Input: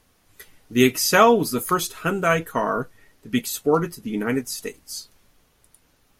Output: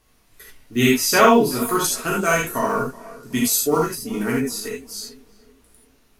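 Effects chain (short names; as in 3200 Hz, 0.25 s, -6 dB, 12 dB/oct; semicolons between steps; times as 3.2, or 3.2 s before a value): block floating point 7-bit; 1.84–4.32 band shelf 7600 Hz +9 dB; tape echo 0.374 s, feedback 47%, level -18 dB, low-pass 1600 Hz; non-linear reverb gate 0.11 s flat, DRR -4 dB; gain -3.5 dB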